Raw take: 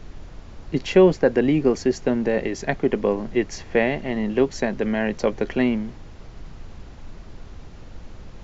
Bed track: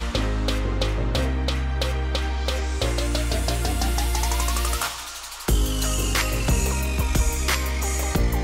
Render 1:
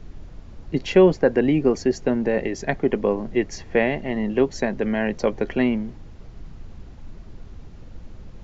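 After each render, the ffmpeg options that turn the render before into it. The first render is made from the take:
-af "afftdn=nr=6:nf=-42"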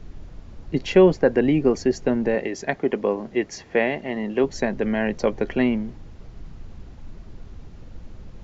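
-filter_complex "[0:a]asettb=1/sr,asplit=3[a][b][c];[a]atrim=end=2.354[d];[b]atrim=start=2.35:end=4.44,asetpts=PTS-STARTPTS,afade=t=in:d=0.004:c=qsin,afade=t=out:st=2.086:d=0.004:c=qsin,highpass=f=240:p=1[e];[c]atrim=start=4.436[f];[d][e]acrossfade=d=0.004:c1=hsin:c2=qsin[g];[g][f]acrossfade=d=0.004:c1=qsin:c2=hsin"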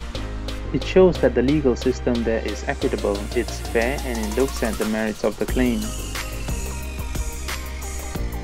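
-filter_complex "[1:a]volume=-6dB[a];[0:a][a]amix=inputs=2:normalize=0"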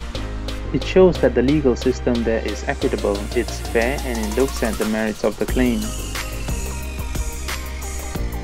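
-af "volume=2dB,alimiter=limit=-3dB:level=0:latency=1"

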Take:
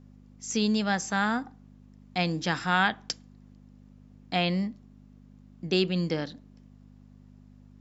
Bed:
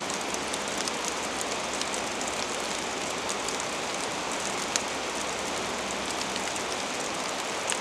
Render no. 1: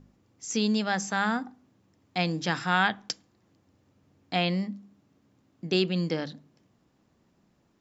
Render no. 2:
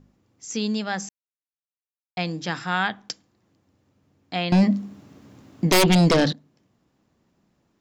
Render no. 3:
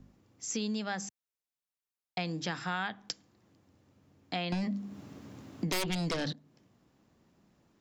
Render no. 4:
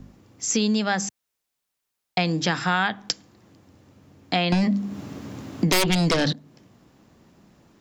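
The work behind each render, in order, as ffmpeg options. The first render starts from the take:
-af "bandreject=f=50:t=h:w=4,bandreject=f=100:t=h:w=4,bandreject=f=150:t=h:w=4,bandreject=f=200:t=h:w=4,bandreject=f=250:t=h:w=4"
-filter_complex "[0:a]asettb=1/sr,asplit=3[a][b][c];[a]atrim=end=4.524[d];[b]atrim=start=4.52:end=6.33,asetpts=PTS-STARTPTS,afade=t=in:d=0.004:c=qsin,afade=t=out:st=1.806:d=0.004:c=qsin,aeval=exprs='0.237*sin(PI/2*4.47*val(0)/0.237)':c=same[e];[c]atrim=start=6.326[f];[d][e]acrossfade=d=0.004:c1=hsin:c2=qsin[g];[g][f]acrossfade=d=0.004:c1=qsin:c2=hsin,asplit=3[h][i][j];[h]atrim=end=1.09,asetpts=PTS-STARTPTS,afade=t=out:st=1.086:d=0.004:c=hsin[k];[i]atrim=start=1.09:end=2.17,asetpts=PTS-STARTPTS,volume=0[l];[j]atrim=start=2.17,asetpts=PTS-STARTPTS,afade=t=in:d=0.004:c=hsin[m];[k][l][m]concat=n=3:v=0:a=1"
-filter_complex "[0:a]acrossover=split=100|1200|2000[a][b][c][d];[b]alimiter=limit=-16.5dB:level=0:latency=1[e];[a][e][c][d]amix=inputs=4:normalize=0,acompressor=threshold=-34dB:ratio=3"
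-af "volume=12dB"

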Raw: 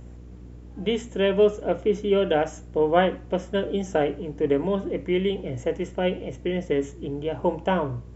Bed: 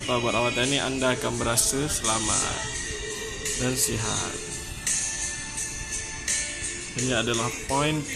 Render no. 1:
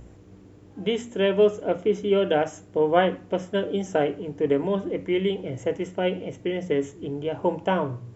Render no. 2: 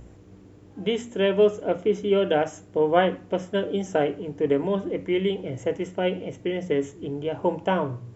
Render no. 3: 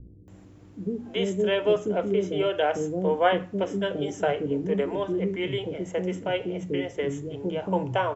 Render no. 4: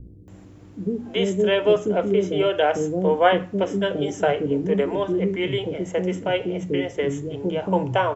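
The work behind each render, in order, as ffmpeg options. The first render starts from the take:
-af "bandreject=f=60:t=h:w=4,bandreject=f=120:t=h:w=4,bandreject=f=180:t=h:w=4,bandreject=f=240:t=h:w=4"
-af anull
-filter_complex "[0:a]acrossover=split=390[a][b];[b]adelay=280[c];[a][c]amix=inputs=2:normalize=0"
-af "volume=4.5dB"

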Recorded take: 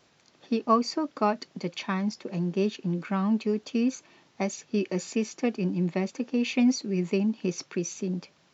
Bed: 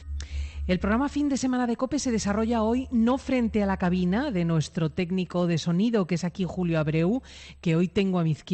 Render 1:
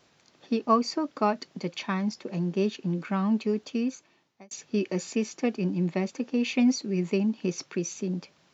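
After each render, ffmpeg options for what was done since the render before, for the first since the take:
-filter_complex "[0:a]asplit=2[a][b];[a]atrim=end=4.51,asetpts=PTS-STARTPTS,afade=t=out:st=3.57:d=0.94[c];[b]atrim=start=4.51,asetpts=PTS-STARTPTS,afade=t=in:d=0.004:c=hsin[d];[c][d]concat=n=2:v=0:a=1"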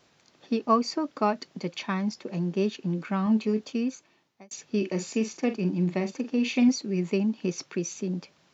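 -filter_complex "[0:a]asettb=1/sr,asplit=3[a][b][c];[a]atrim=end=3.244[d];[b]atrim=start=3.24:end=3.73,asetpts=PTS-STARTPTS,afade=t=in:d=0.004:c=qsin,afade=t=out:st=0.486:d=0.004:c=qsin,asplit=2[e][f];[f]adelay=23,volume=-7.5dB[g];[e][g]amix=inputs=2:normalize=0,atrim=end_sample=21609[h];[c]atrim=start=3.726[i];[d][h]acrossfade=d=0.004:c1=hsin:c2=qsin[j];[j][i]acrossfade=d=0.004:c1=qsin:c2=hsin,asettb=1/sr,asplit=3[k][l][m];[k]atrim=end=4.774[n];[l]atrim=start=4.77:end=6.69,asetpts=PTS-STARTPTS,afade=t=in:d=0.004:c=qsin,afade=t=out:st=1.916:d=0.004:c=qsin,asplit=2[o][p];[p]adelay=45,volume=-10dB[q];[o][q]amix=inputs=2:normalize=0,atrim=end_sample=84672[r];[m]atrim=start=6.686[s];[n][r]acrossfade=d=0.004:c1=hsin:c2=qsin[t];[t][s]acrossfade=d=0.004:c1=qsin:c2=hsin"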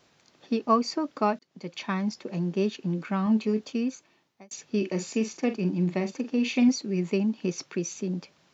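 -filter_complex "[0:a]asplit=2[a][b];[a]atrim=end=1.39,asetpts=PTS-STARTPTS,afade=t=out:st=1.386:d=0.004:c=hsin[c];[b]atrim=start=1.39,asetpts=PTS-STARTPTS,afade=t=in:d=0.49[d];[c][d]concat=n=2:v=0:a=1"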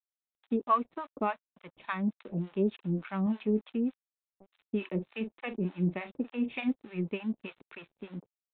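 -filter_complex "[0:a]aresample=8000,aeval=exprs='sgn(val(0))*max(abs(val(0))-0.00398,0)':c=same,aresample=44100,acrossover=split=700[a][b];[a]aeval=exprs='val(0)*(1-1/2+1/2*cos(2*PI*3.4*n/s))':c=same[c];[b]aeval=exprs='val(0)*(1-1/2-1/2*cos(2*PI*3.4*n/s))':c=same[d];[c][d]amix=inputs=2:normalize=0"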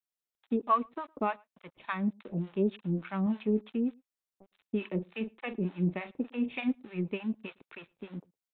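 -filter_complex "[0:a]asplit=2[a][b];[b]adelay=110.8,volume=-29dB,highshelf=f=4k:g=-2.49[c];[a][c]amix=inputs=2:normalize=0"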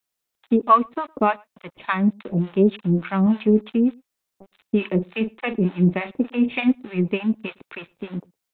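-af "volume=11.5dB"

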